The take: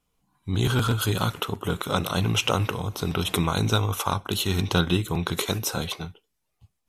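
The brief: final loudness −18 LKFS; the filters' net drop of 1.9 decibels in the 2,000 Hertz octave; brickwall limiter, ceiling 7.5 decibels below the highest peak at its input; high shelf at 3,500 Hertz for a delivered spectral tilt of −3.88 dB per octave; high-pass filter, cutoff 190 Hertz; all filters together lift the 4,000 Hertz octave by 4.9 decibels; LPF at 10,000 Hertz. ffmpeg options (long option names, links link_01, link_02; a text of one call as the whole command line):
ffmpeg -i in.wav -af "highpass=190,lowpass=10000,equalizer=frequency=2000:width_type=o:gain=-7,highshelf=frequency=3500:gain=6,equalizer=frequency=4000:width_type=o:gain=4.5,volume=9dB,alimiter=limit=-4dB:level=0:latency=1" out.wav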